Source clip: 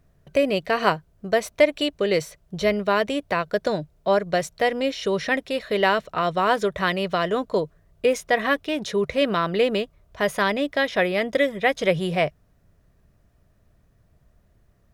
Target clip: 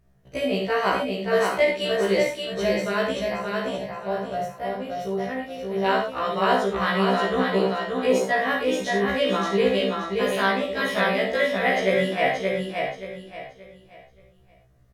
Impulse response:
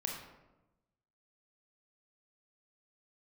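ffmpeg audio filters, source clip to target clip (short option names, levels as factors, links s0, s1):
-filter_complex "[0:a]asettb=1/sr,asplit=3[s0][s1][s2];[s0]atrim=end=3.194[s3];[s1]atrim=start=3.19:end=5.86,asetpts=PTS-STARTPTS,afade=t=in:d=0.004:c=qsin,afade=t=out:st=2.666:d=0.004:c=qsin,equalizer=f=125:t=o:w=1:g=4,equalizer=f=250:t=o:w=1:g=-8,equalizer=f=500:t=o:w=1:g=-5,equalizer=f=1000:t=o:w=1:g=-3,equalizer=f=2000:t=o:w=1:g=-9,equalizer=f=4000:t=o:w=1:g=-10,equalizer=f=8000:t=o:w=1:g=-12[s4];[s2]atrim=start=5.856[s5];[s3][s4]acrossfade=d=0.004:c1=hsin:c2=qsin[s6];[s6][s5]acrossfade=d=0.004:c1=qsin:c2=hsin,aecho=1:1:577|1154|1731|2308:0.668|0.201|0.0602|0.018[s7];[1:a]atrim=start_sample=2205,afade=t=out:st=0.14:d=0.01,atrim=end_sample=6615,asetrate=35721,aresample=44100[s8];[s7][s8]afir=irnorm=-1:irlink=0,afftfilt=real='re*1.73*eq(mod(b,3),0)':imag='im*1.73*eq(mod(b,3),0)':win_size=2048:overlap=0.75,volume=0.891"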